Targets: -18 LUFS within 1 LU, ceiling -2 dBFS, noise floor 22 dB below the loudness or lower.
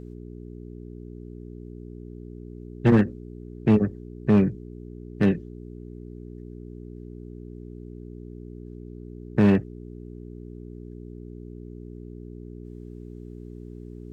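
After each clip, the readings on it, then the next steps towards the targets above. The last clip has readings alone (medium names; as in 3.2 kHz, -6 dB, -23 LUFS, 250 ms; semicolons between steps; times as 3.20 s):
clipped samples 0.4%; clipping level -12.5 dBFS; hum 60 Hz; highest harmonic 420 Hz; hum level -37 dBFS; loudness -23.0 LUFS; peak level -12.5 dBFS; loudness target -18.0 LUFS
-> clip repair -12.5 dBFS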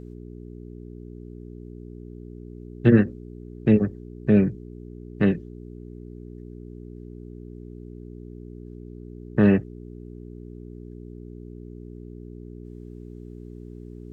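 clipped samples 0.0%; hum 60 Hz; highest harmonic 420 Hz; hum level -37 dBFS
-> de-hum 60 Hz, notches 7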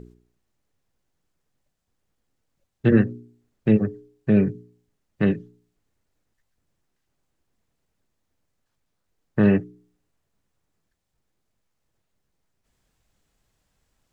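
hum not found; loudness -22.5 LUFS; peak level -5.5 dBFS; loudness target -18.0 LUFS
-> trim +4.5 dB; peak limiter -2 dBFS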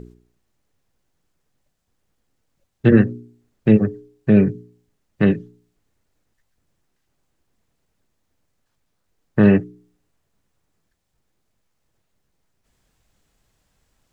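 loudness -18.0 LUFS; peak level -2.0 dBFS; noise floor -72 dBFS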